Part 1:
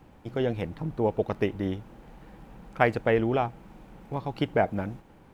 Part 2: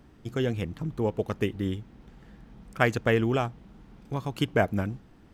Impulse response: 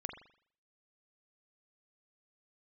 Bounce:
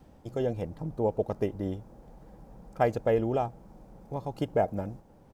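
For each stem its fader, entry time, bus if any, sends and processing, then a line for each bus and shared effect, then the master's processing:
−2.0 dB, 0.00 s, no send, drawn EQ curve 220 Hz 0 dB, 360 Hz −3 dB, 560 Hz +3 dB, 3,000 Hz −17 dB, 5,200 Hz −2 dB
−7.5 dB, 2.4 ms, no send, high-shelf EQ 2,600 Hz +9 dB; automatic ducking −12 dB, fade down 0.50 s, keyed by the first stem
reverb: not used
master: no processing

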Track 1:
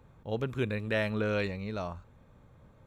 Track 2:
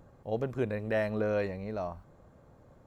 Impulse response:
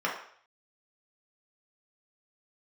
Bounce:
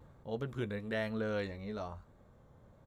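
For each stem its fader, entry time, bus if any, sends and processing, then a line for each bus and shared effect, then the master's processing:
0.0 dB, 0.00 s, no send, notch filter 2,500 Hz, Q 6; automatic ducking −6 dB, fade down 0.25 s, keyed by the second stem
−7.0 dB, 14 ms, no send, downward compressor, threshold −36 dBFS, peak gain reduction 10.5 dB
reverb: not used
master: pitch vibrato 1.1 Hz 47 cents

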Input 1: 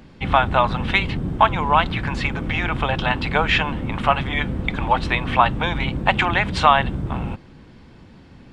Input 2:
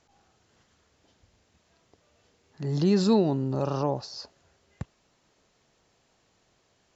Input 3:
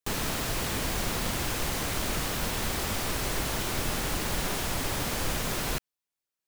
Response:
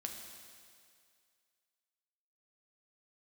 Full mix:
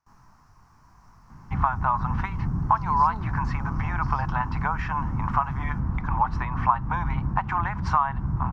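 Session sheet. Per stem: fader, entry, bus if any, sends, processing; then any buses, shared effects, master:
+1.0 dB, 1.30 s, no send, parametric band 1,700 Hz +2 dB; downward compressor 6 to 1, threshold −19 dBFS, peak gain reduction 11 dB
−13.5 dB, 0.00 s, no send, parametric band 3,000 Hz +11.5 dB 2.6 octaves
−17.5 dB, 0.00 s, no send, micro pitch shift up and down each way 29 cents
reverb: not used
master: drawn EQ curve 140 Hz 0 dB, 530 Hz −19 dB, 1,000 Hz +5 dB, 3,500 Hz −27 dB, 5,600 Hz −8 dB, 8,300 Hz −22 dB

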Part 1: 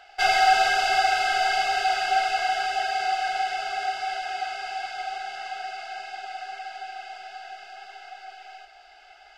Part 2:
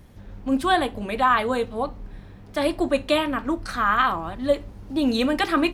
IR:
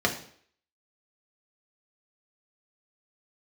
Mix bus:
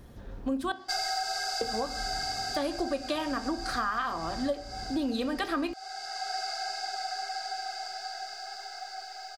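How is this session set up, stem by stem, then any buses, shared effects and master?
+0.5 dB, 0.70 s, no send, drawn EQ curve 1,800 Hz 0 dB, 2,900 Hz −13 dB, 4,500 Hz +11 dB; automatic ducking −11 dB, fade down 1.35 s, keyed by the second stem
−1.5 dB, 0.00 s, muted 0:00.72–0:01.61, send −19.5 dB, no processing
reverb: on, RT60 0.55 s, pre-delay 3 ms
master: downward compressor 6 to 1, threshold −28 dBFS, peak gain reduction 14 dB

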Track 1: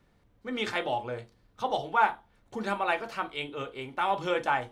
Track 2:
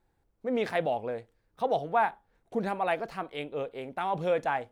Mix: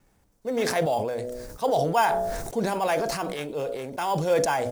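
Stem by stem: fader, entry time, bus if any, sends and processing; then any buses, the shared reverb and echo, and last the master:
0.0 dB, 0.00 s, no send, decimation without filtering 11×; automatic ducking −8 dB, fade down 0.20 s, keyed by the second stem
+3.0 dB, 5.4 ms, polarity flipped, no send, high shelf with overshoot 4,300 Hz +10.5 dB, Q 1.5; hum removal 61.61 Hz, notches 11; level that may fall only so fast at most 31 dB per second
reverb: not used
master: no processing

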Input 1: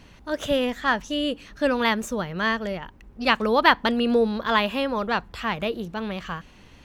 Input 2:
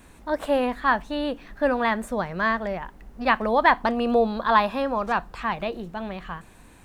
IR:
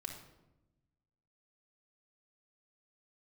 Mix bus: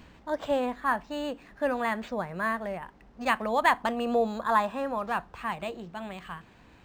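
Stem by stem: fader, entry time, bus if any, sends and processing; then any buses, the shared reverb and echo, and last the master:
−2.5 dB, 0.00 s, no send, automatic ducking −12 dB, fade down 0.25 s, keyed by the second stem
−3.5 dB, 0.00 s, polarity flipped, no send, high-pass filter 65 Hz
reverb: not used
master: linearly interpolated sample-rate reduction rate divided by 4×

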